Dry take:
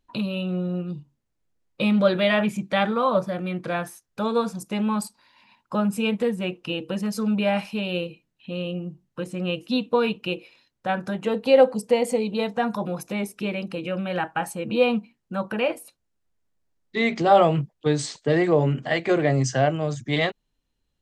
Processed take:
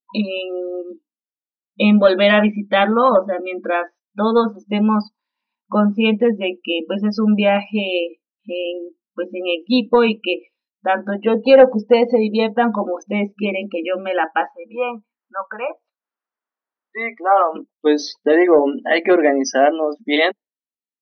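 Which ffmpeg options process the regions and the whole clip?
-filter_complex "[0:a]asettb=1/sr,asplit=3[a][b][c];[a]atrim=end=14.504[d];[b]atrim=start=14.5:end=17.56,asetpts=PTS-STARTPTS,afade=t=in:d=0.004:c=qsin,afade=t=out:st=3.056:d=0.004:c=qsin,bandpass=f=1.2k:t=q:w=1.7,acompressor=mode=upward:threshold=-44dB:ratio=2.5:attack=3.2:release=140:knee=2.83:detection=peak[e];[c]atrim=start=17.556[f];[d][e]acrossfade=d=0.004:c1=hsin:c2=qsin[g];[g][f]acrossfade=d=0.004:c1=qsin:c2=hsin,afftfilt=real='re*between(b*sr/4096,200,6200)':imag='im*between(b*sr/4096,200,6200)':win_size=4096:overlap=0.75,acontrast=81,afftdn=nr=32:nf=-28,volume=1.5dB"

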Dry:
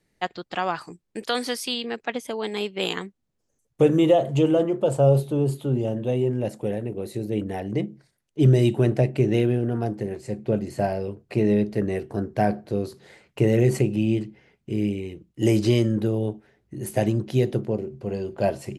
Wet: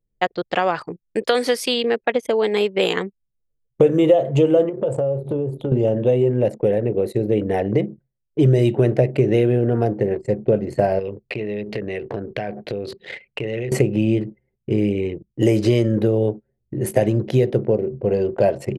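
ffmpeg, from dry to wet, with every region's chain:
-filter_complex "[0:a]asettb=1/sr,asplit=3[a][b][c];[a]atrim=end=4.694[d];[b]atrim=start=4.69:end=5.72,asetpts=PTS-STARTPTS,afade=t=in:d=0.004:c=qsin,afade=t=out:st=1.026:d=0.004:c=qsin,equalizer=f=76:t=o:w=2.1:g=4,acompressor=threshold=-29dB:ratio=12:attack=3.2:release=140:knee=1:detection=peak,asplit=2[e][f];[f]adelay=18,volume=-10dB[g];[e][g]amix=inputs=2:normalize=0,atrim=end_sample=45423[h];[c]atrim=start=5.716[i];[d][h]acrossfade=d=0.004:c1=hsin:c2=qsin[j];[j][i]acrossfade=d=0.004:c1=qsin:c2=hsin,asettb=1/sr,asplit=3[k][l][m];[k]atrim=end=10.994[n];[l]atrim=start=10.99:end=13.72,asetpts=PTS-STARTPTS,afade=t=in:d=0.004:c=qsin,afade=t=out:st=2.726:d=0.004:c=qsin,equalizer=f=3k:t=o:w=1.6:g=14,acompressor=threshold=-33dB:ratio=10:attack=3.2:release=140:knee=1:detection=peak[o];[m]atrim=start=13.716[p];[n][o]acrossfade=d=0.004:c1=hsin:c2=qsin[q];[q][p]acrossfade=d=0.004:c1=qsin:c2=hsin,anlmdn=0.251,equalizer=f=125:t=o:w=1:g=4,equalizer=f=500:t=o:w=1:g=10,equalizer=f=2k:t=o:w=1:g=5,acompressor=threshold=-21dB:ratio=2.5,volume=5dB"

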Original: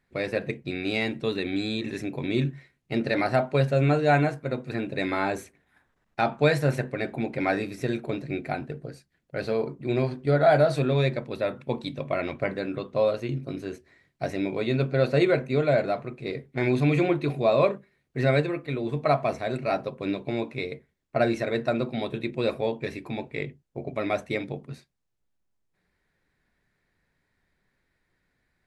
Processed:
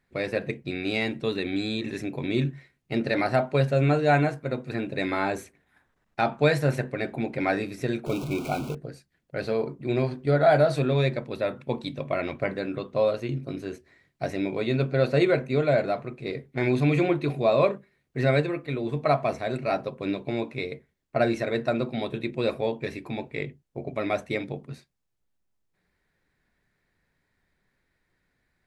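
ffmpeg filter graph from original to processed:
-filter_complex "[0:a]asettb=1/sr,asplit=3[a][b][c];[a]atrim=end=8.064[d];[b]atrim=start=8.06:end=8.75,asetpts=PTS-STARTPTS,afade=t=in:d=0.004:c=qsin,afade=t=out:st=0.686:d=0.004:c=qsin,aeval=exprs='val(0)+0.5*0.0251*sgn(val(0))':c=same,asuperstop=centerf=1800:order=12:qfactor=2.6[e];[c]atrim=start=8.746[f];[d][e]acrossfade=d=0.004:c1=hsin:c2=qsin[g];[g][f]acrossfade=d=0.004:c1=qsin:c2=hsin"

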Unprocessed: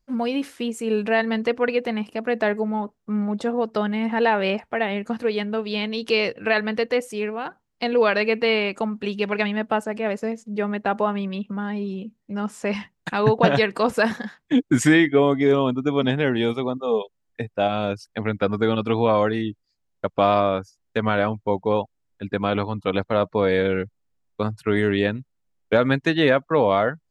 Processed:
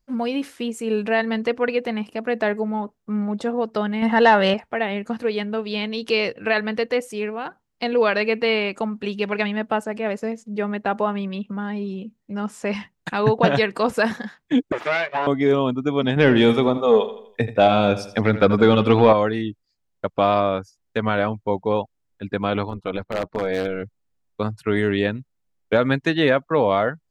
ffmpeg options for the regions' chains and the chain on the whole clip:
-filter_complex "[0:a]asettb=1/sr,asplit=3[a][b][c];[a]atrim=end=4.024[d];[b]atrim=start=4.02:end=4.54,asetpts=PTS-STARTPTS,afade=t=in:d=0.004:c=qsin,afade=t=out:st=0.516:d=0.004:c=qsin,equalizer=f=330:t=o:w=0.67:g=-8.5,acontrast=88,asuperstop=centerf=2400:order=4:qfactor=6.5[e];[c]atrim=start=4.536[f];[d][e]acrossfade=d=0.004:c1=hsin:c2=qsin[g];[g][f]acrossfade=d=0.004:c1=qsin:c2=hsin,asettb=1/sr,asplit=3[h][i][j];[h]atrim=end=14.724[k];[i]atrim=start=14.72:end=15.27,asetpts=PTS-STARTPTS,afade=t=in:d=0.004:c=qsin,afade=t=out:st=0.546:d=0.004:c=qsin,aeval=exprs='abs(val(0))':c=same,highpass=390,lowpass=2.7k[l];[j]atrim=start=15.266[m];[k][l]acrossfade=d=0.004:c1=hsin:c2=qsin[n];[n][m]acrossfade=d=0.004:c1=qsin:c2=hsin,asettb=1/sr,asplit=3[o][p][q];[o]atrim=end=16.164[r];[p]atrim=start=16.16:end=19.13,asetpts=PTS-STARTPTS,afade=t=in:d=0.004:c=qsin,afade=t=out:st=2.966:d=0.004:c=qsin,acontrast=82,aecho=1:1:82|164|246|328:0.211|0.0909|0.0391|0.0168,atrim=end_sample=130977[s];[q]atrim=start=19.126[t];[r][s]acrossfade=d=0.004:c1=hsin:c2=qsin[u];[u][t]acrossfade=d=0.004:c1=qsin:c2=hsin,asettb=1/sr,asplit=3[v][w][x];[v]atrim=end=22.694[y];[w]atrim=start=22.69:end=23.83,asetpts=PTS-STARTPTS,afade=t=in:d=0.004:c=qsin,afade=t=out:st=1.136:d=0.004:c=qsin,highshelf=f=4.9k:g=-7,tremolo=f=190:d=0.71,aeval=exprs='0.178*(abs(mod(val(0)/0.178+3,4)-2)-1)':c=same[z];[x]atrim=start=23.826[aa];[y][z]acrossfade=d=0.004:c1=hsin:c2=qsin[ab];[ab][aa]acrossfade=d=0.004:c1=qsin:c2=hsin"

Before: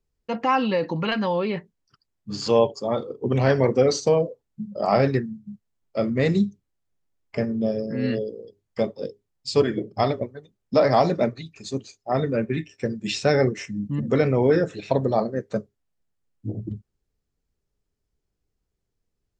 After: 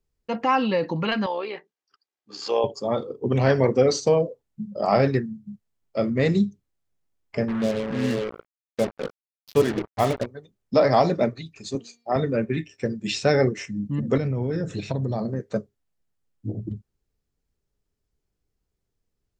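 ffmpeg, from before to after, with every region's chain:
-filter_complex "[0:a]asettb=1/sr,asplit=3[a][b][c];[a]atrim=end=1.264[d];[b]atrim=start=1.26:end=2.64,asetpts=PTS-STARTPTS,afade=t=in:d=0.004:c=qsin,afade=t=out:st=1.376:d=0.004:c=qsin,aecho=1:1:2.5:0.32,atrim=end_sample=60858,tremolo=f=69:d=0.462,highpass=480,lowpass=6.2k[e];[c]atrim=start=2.636[f];[d][e]acrossfade=d=0.004:c1=hsin:c2=qsin[g];[g][f]acrossfade=d=0.004:c1=qsin:c2=hsin,asettb=1/sr,asplit=3[h][i][j];[h]atrim=end=7.484[k];[i]atrim=start=7.48:end=10.26,asetpts=PTS-STARTPTS,afade=t=in:d=0.004:c=qsin,afade=t=out:st=2.776:d=0.004:c=qsin,lowpass=f=3.6k:w=0.5412,lowpass=f=3.6k:w=1.3066,acrusher=bits=4:mix=0:aa=0.5[l];[j]atrim=start=10.256[m];[k][l]acrossfade=d=0.004:c1=hsin:c2=qsin[n];[n][m]acrossfade=d=0.004:c1=qsin:c2=hsin,asettb=1/sr,asplit=3[o][p][q];[o]atrim=end=11.754[r];[p]atrim=start=11.75:end=12.16,asetpts=PTS-STARTPTS,afade=t=in:d=0.004:c=qsin,afade=t=out:st=0.406:d=0.004:c=qsin,highpass=160,bandreject=f=235.8:t=h:w=4,bandreject=f=471.6:t=h:w=4,bandreject=f=707.4:t=h:w=4,bandreject=f=943.2:t=h:w=4,bandreject=f=1.179k:t=h:w=4,bandreject=f=1.4148k:t=h:w=4,bandreject=f=1.6506k:t=h:w=4,bandreject=f=1.8864k:t=h:w=4,bandreject=f=2.1222k:t=h:w=4,bandreject=f=2.358k:t=h:w=4,bandreject=f=2.5938k:t=h:w=4,bandreject=f=2.8296k:t=h:w=4,bandreject=f=3.0654k:t=h:w=4,bandreject=f=3.3012k:t=h:w=4,bandreject=f=3.537k:t=h:w=4,bandreject=f=3.7728k:t=h:w=4,bandreject=f=4.0086k:t=h:w=4,bandreject=f=4.2444k:t=h:w=4,bandreject=f=4.4802k:t=h:w=4[s];[q]atrim=start=12.156[t];[r][s]acrossfade=d=0.004:c1=hsin:c2=qsin[u];[u][t]acrossfade=d=0.004:c1=qsin:c2=hsin,asettb=1/sr,asplit=3[v][w][x];[v]atrim=end=14.174[y];[w]atrim=start=14.17:end=15.4,asetpts=PTS-STARTPTS,afade=t=in:d=0.004:c=qsin,afade=t=out:st=1.226:d=0.004:c=qsin,bass=f=250:g=13,treble=f=4k:g=6,acompressor=threshold=-23dB:ratio=5:attack=3.2:release=140:knee=1:detection=peak,highpass=53[z];[x]atrim=start=15.396[aa];[y][z]acrossfade=d=0.004:c1=hsin:c2=qsin[ab];[ab][aa]acrossfade=d=0.004:c1=qsin:c2=hsin"

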